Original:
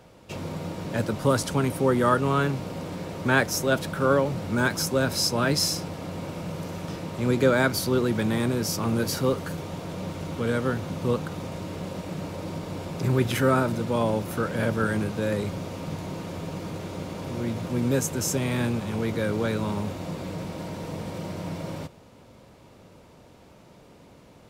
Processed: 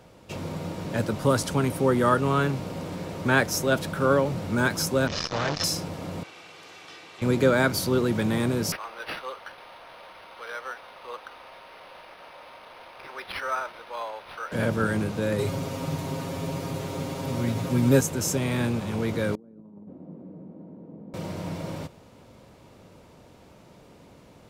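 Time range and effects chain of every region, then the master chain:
0:05.07–0:05.64: linear delta modulator 32 kbit/s, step −22.5 dBFS + comb filter 1.7 ms, depth 48% + saturating transformer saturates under 1,000 Hz
0:06.23–0:07.22: resonant band-pass 2,800 Hz, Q 0.91 + comb filter 2.6 ms, depth 48%
0:08.72–0:14.52: Bessel high-pass filter 1,000 Hz, order 4 + high-shelf EQ 11,000 Hz −5.5 dB + linearly interpolated sample-rate reduction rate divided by 6×
0:15.38–0:18.01: high-shelf EQ 9,000 Hz +6.5 dB + comb filter 7.4 ms, depth 90%
0:19.35–0:21.14: four-pole ladder band-pass 270 Hz, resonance 40% + compressor whose output falls as the input rises −42 dBFS, ratio −0.5
whole clip: no processing

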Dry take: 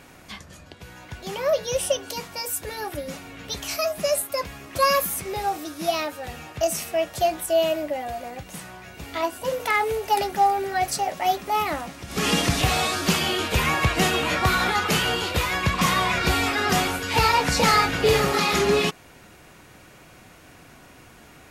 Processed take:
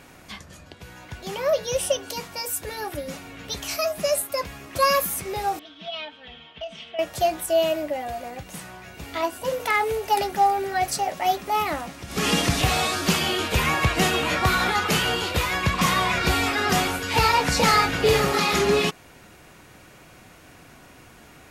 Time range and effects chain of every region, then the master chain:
0:05.59–0:06.99: comb filter 4.5 ms, depth 84% + downward compressor 3 to 1, threshold −19 dBFS + transistor ladder low-pass 3,400 Hz, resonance 80%
whole clip: no processing

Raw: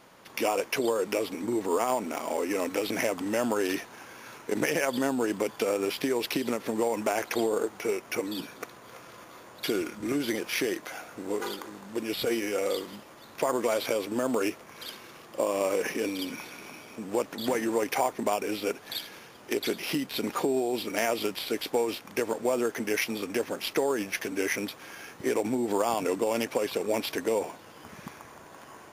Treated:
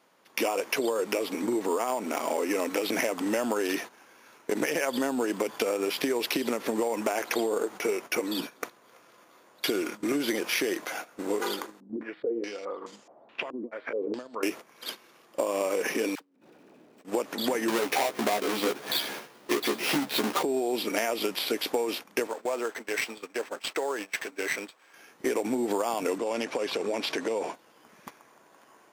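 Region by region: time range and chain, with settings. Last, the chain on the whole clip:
0:11.80–0:14.43: hum removal 158.6 Hz, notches 39 + downward compressor 16 to 1, threshold −37 dBFS + low-pass on a step sequencer 4.7 Hz 280–7,000 Hz
0:16.15–0:17.05: running median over 41 samples + all-pass dispersion lows, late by 64 ms, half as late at 730 Hz + compressor whose output falls as the input rises −50 dBFS
0:17.68–0:20.43: each half-wave held at its own peak + double-tracking delay 14 ms −3.5 dB
0:22.27–0:24.94: high-pass filter 1,000 Hz 6 dB per octave + high-shelf EQ 2,400 Hz −6.5 dB + windowed peak hold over 3 samples
0:26.18–0:27.54: low-pass filter 7,400 Hz + downward compressor 3 to 1, threshold −30 dBFS
whole clip: high-pass filter 210 Hz 12 dB per octave; noise gate −40 dBFS, range −14 dB; downward compressor, threshold −29 dBFS; level +5 dB

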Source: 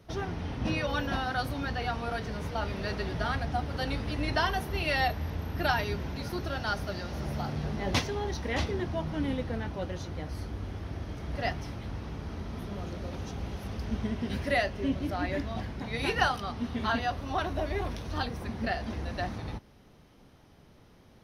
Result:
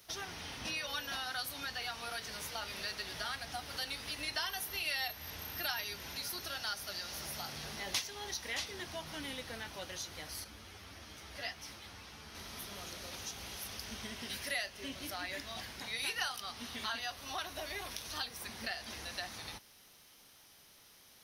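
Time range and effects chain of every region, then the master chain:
0:10.44–0:12.35: high-shelf EQ 6,000 Hz −5 dB + string-ensemble chorus
whole clip: first-order pre-emphasis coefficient 0.97; downward compressor 2 to 1, threshold −53 dBFS; level +12.5 dB

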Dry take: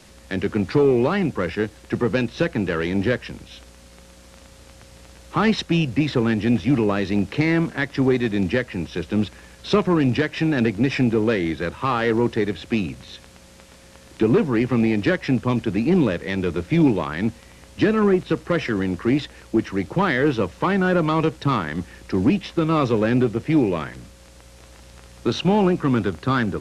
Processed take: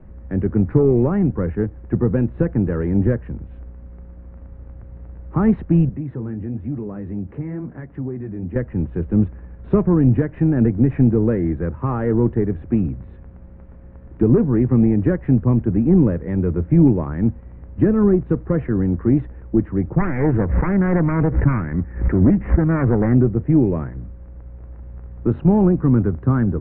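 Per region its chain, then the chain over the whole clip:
0:05.89–0:08.56: high-pass filter 60 Hz + flanger 1 Hz, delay 4 ms, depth 8.9 ms, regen −48% + downward compressor 2 to 1, threshold −33 dBFS
0:19.97–0:23.15: phase distortion by the signal itself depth 0.43 ms + high shelf with overshoot 2,900 Hz −12 dB, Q 3 + background raised ahead of every attack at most 86 dB per second
whole clip: low-pass filter 1,900 Hz 24 dB per octave; spectral tilt −4.5 dB per octave; level −5.5 dB

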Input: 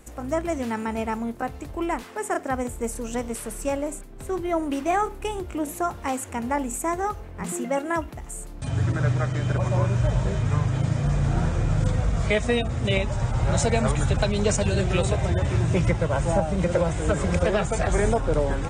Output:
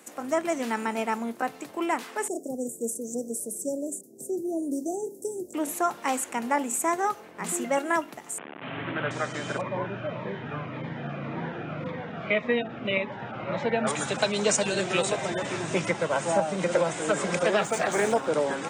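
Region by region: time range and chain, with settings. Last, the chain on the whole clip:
0:02.28–0:05.54: inverse Chebyshev band-stop filter 1,200–3,000 Hz, stop band 60 dB + one half of a high-frequency compander encoder only
0:08.38–0:09.11: linear delta modulator 16 kbit/s, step −29 dBFS + high-pass filter 60 Hz + one half of a high-frequency compander decoder only
0:09.61–0:13.87: low-pass filter 2,800 Hz 24 dB per octave + phaser whose notches keep moving one way falling 1.8 Hz
0:17.57–0:18.27: running median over 3 samples + highs frequency-modulated by the lows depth 0.15 ms
whole clip: high-pass filter 190 Hz 24 dB per octave; tilt shelving filter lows −3 dB, about 690 Hz

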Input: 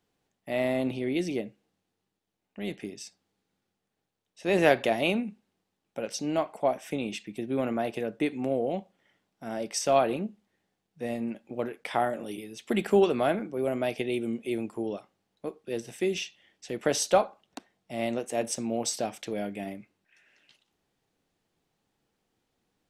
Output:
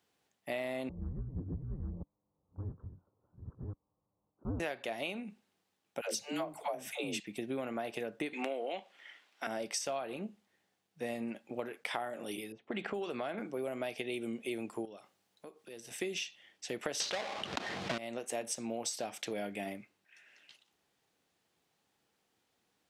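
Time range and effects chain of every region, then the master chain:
0:00.89–0:04.60: delay that plays each chunk backwards 568 ms, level 0 dB + Butterworth low-pass 1,400 Hz 72 dB per octave + frequency shifter −300 Hz
0:06.01–0:07.20: high-pass filter 53 Hz + high-shelf EQ 9,700 Hz +11.5 dB + all-pass dispersion lows, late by 141 ms, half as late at 400 Hz
0:08.33–0:09.47: high-pass filter 240 Hz 24 dB per octave + parametric band 2,400 Hz +14.5 dB 2.8 octaves
0:12.52–0:13.38: low-pass that shuts in the quiet parts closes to 650 Hz, open at −18.5 dBFS + downward compressor 2.5 to 1, threshold −31 dBFS
0:14.85–0:15.91: high-shelf EQ 5,200 Hz +6 dB + downward compressor 2.5 to 1, threshold −50 dBFS
0:17.00–0:17.98: each half-wave held at its own peak + Chebyshev low-pass filter 4,100 Hz + envelope flattener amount 70%
whole clip: high-pass filter 54 Hz; low-shelf EQ 480 Hz −8.5 dB; downward compressor 12 to 1, threshold −36 dBFS; level +2.5 dB

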